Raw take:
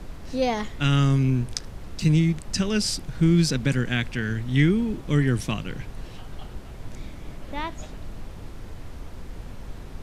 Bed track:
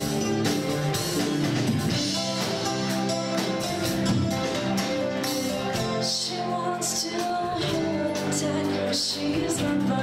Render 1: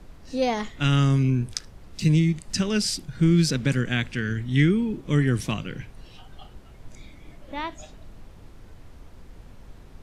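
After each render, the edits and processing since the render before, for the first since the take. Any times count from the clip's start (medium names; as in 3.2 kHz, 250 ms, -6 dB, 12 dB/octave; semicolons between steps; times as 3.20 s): noise print and reduce 8 dB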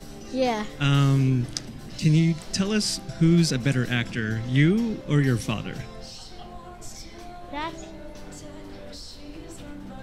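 add bed track -16 dB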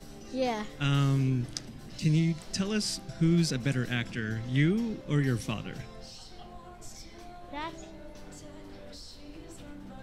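trim -6 dB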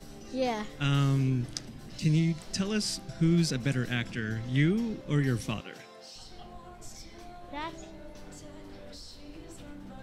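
5.60–6.16 s: high-pass 350 Hz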